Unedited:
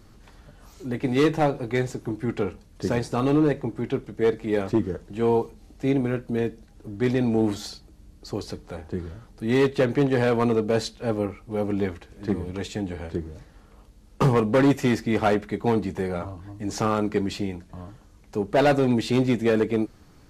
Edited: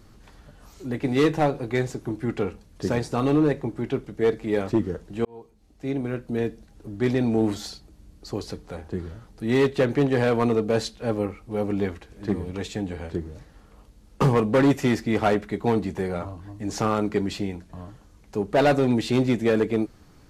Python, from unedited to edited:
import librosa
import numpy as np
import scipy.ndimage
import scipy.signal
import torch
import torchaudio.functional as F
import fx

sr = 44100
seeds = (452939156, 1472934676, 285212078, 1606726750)

y = fx.edit(x, sr, fx.fade_in_span(start_s=5.25, length_s=1.23), tone=tone)